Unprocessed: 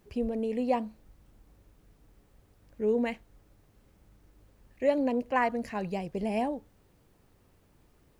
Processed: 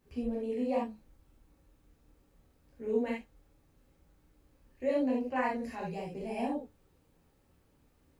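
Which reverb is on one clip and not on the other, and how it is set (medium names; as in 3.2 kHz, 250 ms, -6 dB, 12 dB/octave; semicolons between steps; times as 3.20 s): gated-style reverb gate 100 ms flat, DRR -5 dB; trim -10.5 dB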